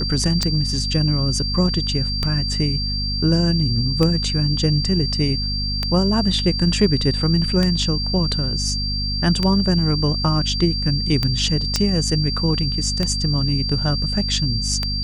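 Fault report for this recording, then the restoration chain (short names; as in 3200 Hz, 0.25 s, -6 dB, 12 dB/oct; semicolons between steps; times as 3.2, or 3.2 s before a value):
hum 50 Hz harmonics 5 -25 dBFS
tick 33 1/3 rpm -7 dBFS
tone 4700 Hz -24 dBFS
11.76 pop -4 dBFS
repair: de-click; de-hum 50 Hz, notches 5; notch 4700 Hz, Q 30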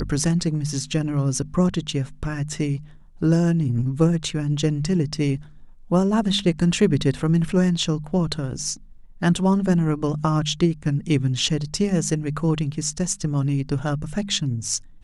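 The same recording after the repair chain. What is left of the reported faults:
none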